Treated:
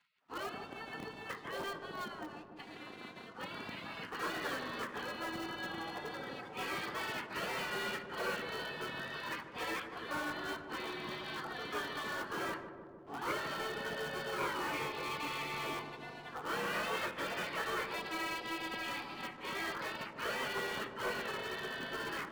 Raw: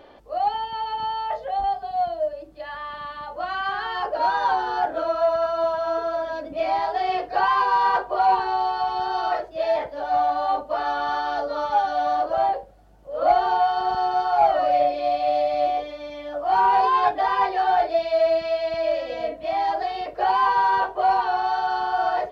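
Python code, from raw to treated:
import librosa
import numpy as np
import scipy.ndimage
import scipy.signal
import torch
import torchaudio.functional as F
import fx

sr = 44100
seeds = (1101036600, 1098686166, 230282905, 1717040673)

p1 = fx.spec_gate(x, sr, threshold_db=-25, keep='weak')
p2 = fx.bandpass_edges(p1, sr, low_hz=170.0, high_hz=2200.0)
p3 = (np.mod(10.0 ** (41.5 / 20.0) * p2 + 1.0, 2.0) - 1.0) / 10.0 ** (41.5 / 20.0)
p4 = p2 + (p3 * 10.0 ** (-8.5 / 20.0))
p5 = fx.leveller(p4, sr, passes=2)
p6 = p5 + fx.echo_filtered(p5, sr, ms=151, feedback_pct=82, hz=1000.0, wet_db=-8, dry=0)
p7 = fx.end_taper(p6, sr, db_per_s=140.0)
y = p7 * 10.0 ** (-3.0 / 20.0)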